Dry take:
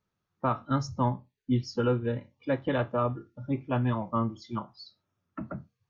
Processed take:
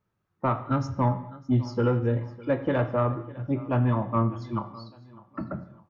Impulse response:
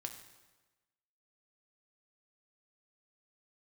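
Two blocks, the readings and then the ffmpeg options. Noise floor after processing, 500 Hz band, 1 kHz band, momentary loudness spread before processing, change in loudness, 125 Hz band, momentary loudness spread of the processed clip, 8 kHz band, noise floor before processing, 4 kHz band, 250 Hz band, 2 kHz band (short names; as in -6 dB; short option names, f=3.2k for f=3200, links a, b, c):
-77 dBFS, +3.0 dB, +2.5 dB, 13 LU, +3.5 dB, +5.0 dB, 12 LU, n/a, -83 dBFS, -4.0 dB, +3.0 dB, +1.5 dB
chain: -filter_complex "[0:a]aecho=1:1:604|1208|1812:0.0891|0.0357|0.0143,asoftclip=type=tanh:threshold=-18dB,asplit=2[a][b];[1:a]atrim=start_sample=2205,afade=t=out:st=0.32:d=0.01,atrim=end_sample=14553,lowpass=2.6k[c];[b][c]afir=irnorm=-1:irlink=0,volume=5.5dB[d];[a][d]amix=inputs=2:normalize=0,volume=-3dB"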